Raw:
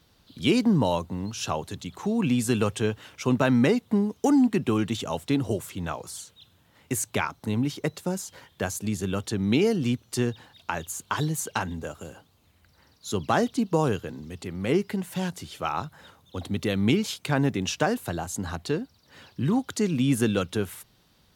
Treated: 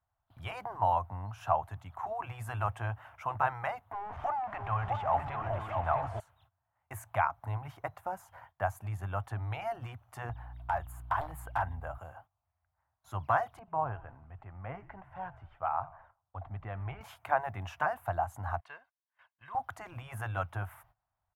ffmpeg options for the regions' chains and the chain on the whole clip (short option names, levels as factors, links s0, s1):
-filter_complex "[0:a]asettb=1/sr,asplit=3[s0][s1][s2];[s0]atrim=end=3.924[s3];[s1]atrim=start=3.92:end=6.2,asetpts=PTS-STARTPTS,afade=t=in:d=0.004:c=qsin,afade=t=out:st=2.276:d=0.004:c=qsin,aeval=exprs='val(0)+0.5*0.0266*sgn(val(0))':c=same,lowpass=3900,aecho=1:1:652|896:0.501|0.251,atrim=end_sample=100548[s4];[s2]atrim=start=6.196[s5];[s3][s4]acrossfade=d=0.004:c1=hsin:c2=qsin[s6];[s6][s5]acrossfade=d=0.004:c1=qsin:c2=hsin,asettb=1/sr,asplit=3[s7][s8][s9];[s7]atrim=end=10.294[s10];[s8]atrim=start=10.29:end=11.98,asetpts=PTS-STARTPTS,afade=t=in:d=0.004:c=qsin,afade=t=out:st=1.686:d=0.004:c=qsin,equalizer=f=6100:t=o:w=0.26:g=-12,aeval=exprs='val(0)+0.00891*(sin(2*PI*60*n/s)+sin(2*PI*2*60*n/s)/2+sin(2*PI*3*60*n/s)/3+sin(2*PI*4*60*n/s)/4+sin(2*PI*5*60*n/s)/5)':c=same,aeval=exprs='0.0841*(abs(mod(val(0)/0.0841+3,4)-2)-1)':c=same[s11];[s9]atrim=start=11.976[s12];[s10][s11]acrossfade=d=0.004:c1=hsin:c2=qsin[s13];[s13][s12]acrossfade=d=0.004:c1=qsin:c2=hsin,asettb=1/sr,asplit=3[s14][s15][s16];[s14]atrim=end=13.594[s17];[s15]atrim=start=13.59:end=17.01,asetpts=PTS-STARTPTS,afade=t=in:d=0.004:c=qsin,afade=t=out:st=3.416:d=0.004:c=qsin,lowpass=2400,flanger=delay=0.2:depth=3:regen=-84:speed=1.1:shape=sinusoidal,asplit=6[s18][s19][s20][s21][s22][s23];[s19]adelay=85,afreqshift=-56,volume=0.1[s24];[s20]adelay=170,afreqshift=-112,volume=0.0569[s25];[s21]adelay=255,afreqshift=-168,volume=0.0324[s26];[s22]adelay=340,afreqshift=-224,volume=0.0186[s27];[s23]adelay=425,afreqshift=-280,volume=0.0106[s28];[s18][s24][s25][s26][s27][s28]amix=inputs=6:normalize=0,atrim=end_sample=150822[s29];[s16]atrim=start=17.006[s30];[s17][s29]acrossfade=d=0.004:c1=hsin:c2=qsin[s31];[s31][s30]acrossfade=d=0.004:c1=qsin:c2=hsin,asettb=1/sr,asplit=3[s32][s33][s34];[s32]atrim=end=18.604[s35];[s33]atrim=start=18.6:end=19.55,asetpts=PTS-STARTPTS,afade=t=in:d=0.004:c=qsin,afade=t=out:st=0.946:d=0.004:c=qsin,agate=range=0.316:threshold=0.00282:ratio=16:release=100:detection=peak,bandpass=f=2800:t=q:w=1.1,aecho=1:1:1.9:0.4,atrim=end_sample=41895[s36];[s34]atrim=start=19.546[s37];[s35][s36]acrossfade=d=0.004:c1=hsin:c2=qsin[s38];[s38][s37]acrossfade=d=0.004:c1=qsin:c2=hsin,afftfilt=real='re*lt(hypot(re,im),0.398)':imag='im*lt(hypot(re,im),0.398)':win_size=1024:overlap=0.75,agate=range=0.126:threshold=0.00224:ratio=16:detection=peak,firequalizer=gain_entry='entry(110,0);entry(180,-18);entry(450,-18);entry(680,7);entry(4000,-26);entry(7400,-23);entry(12000,-13)':delay=0.05:min_phase=1,volume=0.794"